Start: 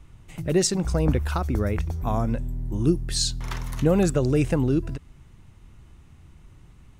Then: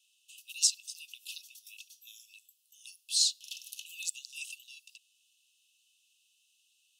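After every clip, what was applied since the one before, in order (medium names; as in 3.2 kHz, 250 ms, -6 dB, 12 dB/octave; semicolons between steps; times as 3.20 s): Chebyshev high-pass 2.6 kHz, order 10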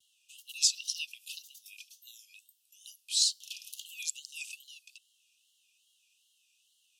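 wow and flutter 130 cents; frequency shift +27 Hz; time-frequency box 0.76–1.06 s, 2.3–6.3 kHz +12 dB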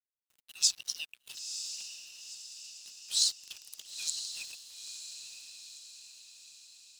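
crossover distortion -46 dBFS; echo that smears into a reverb 963 ms, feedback 52%, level -8 dB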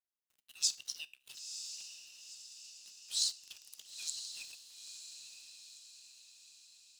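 feedback comb 67 Hz, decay 0.35 s, harmonics all, mix 40%; trim -2.5 dB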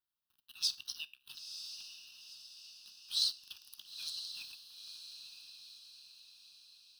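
static phaser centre 2.1 kHz, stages 6; trim +4 dB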